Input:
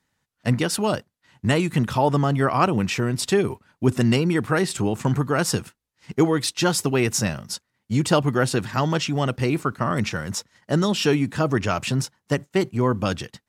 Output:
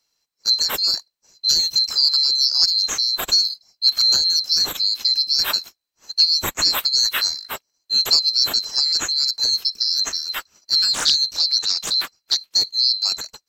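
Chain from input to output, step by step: band-swap scrambler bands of 4000 Hz; 10.92–12.37 Doppler distortion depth 0.37 ms; gain +2 dB

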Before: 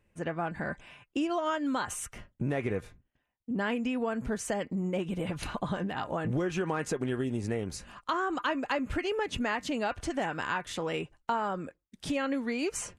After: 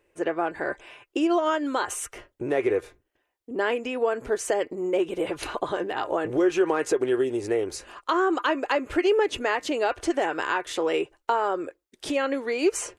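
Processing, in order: resonant low shelf 270 Hz -10 dB, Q 3; gain +5 dB

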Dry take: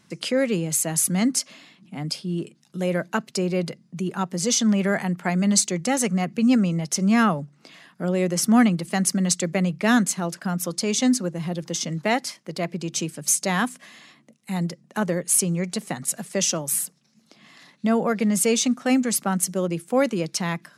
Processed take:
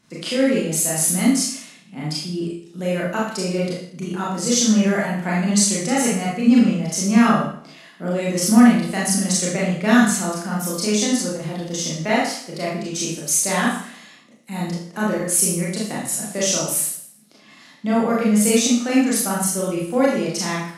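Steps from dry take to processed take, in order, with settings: Schroeder reverb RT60 0.59 s, combs from 26 ms, DRR -6 dB; gain -3.5 dB

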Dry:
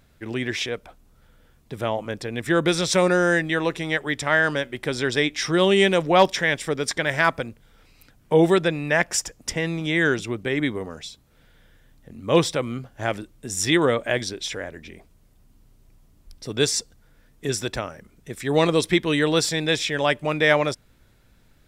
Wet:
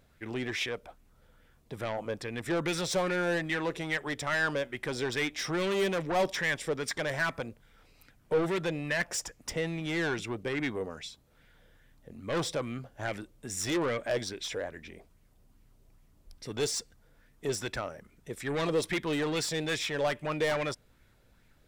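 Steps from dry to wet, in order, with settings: soft clip -21 dBFS, distortion -8 dB; LFO bell 2.4 Hz 460–2300 Hz +7 dB; gain -6.5 dB

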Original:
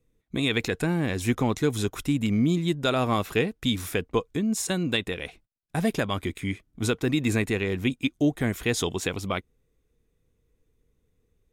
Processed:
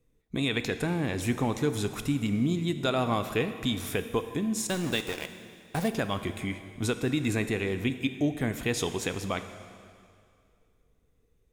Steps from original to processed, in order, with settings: bell 760 Hz +2.5 dB 0.64 oct; in parallel at 0 dB: compressor, threshold -33 dBFS, peak gain reduction 14.5 dB; 4.67–5.88 on the sum: sample gate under -27.5 dBFS; plate-style reverb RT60 2.3 s, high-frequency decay 0.95×, DRR 9 dB; gain -6 dB

